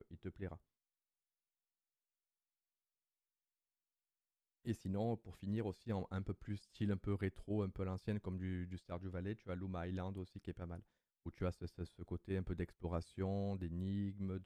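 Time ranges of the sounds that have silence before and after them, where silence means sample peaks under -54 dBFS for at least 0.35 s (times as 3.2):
4.65–10.8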